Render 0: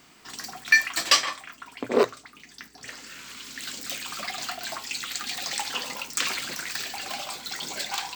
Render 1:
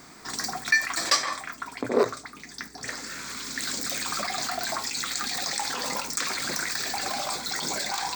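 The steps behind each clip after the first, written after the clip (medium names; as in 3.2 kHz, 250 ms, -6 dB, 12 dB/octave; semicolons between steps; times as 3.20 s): peaking EQ 13 kHz -10 dB 0.3 oct; in parallel at +1 dB: compressor with a negative ratio -36 dBFS, ratio -1; on the sum: peaking EQ 2.9 kHz -14.5 dB 0.4 oct; trim -1.5 dB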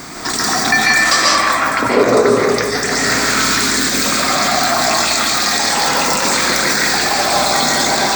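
in parallel at -2.5 dB: compressor with a negative ratio -36 dBFS, ratio -0.5; on the sum: reverberation RT60 2.0 s, pre-delay 100 ms, DRR -4.5 dB; loudness maximiser +10 dB; trim -1 dB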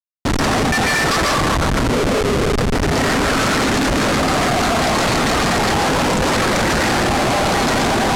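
reverb removal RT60 0.59 s; Schmitt trigger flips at -14 dBFS; low-pass 9.4 kHz 12 dB/octave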